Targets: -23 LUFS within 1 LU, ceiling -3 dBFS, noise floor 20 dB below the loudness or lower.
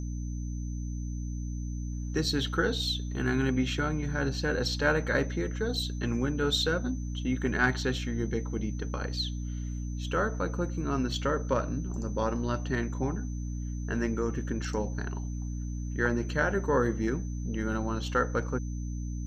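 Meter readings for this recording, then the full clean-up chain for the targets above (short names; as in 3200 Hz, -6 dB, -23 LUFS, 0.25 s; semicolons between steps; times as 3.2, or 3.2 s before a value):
hum 60 Hz; harmonics up to 300 Hz; hum level -32 dBFS; steady tone 6100 Hz; tone level -52 dBFS; loudness -31.0 LUFS; peak -12.0 dBFS; loudness target -23.0 LUFS
-> notches 60/120/180/240/300 Hz; notch 6100 Hz, Q 30; gain +8 dB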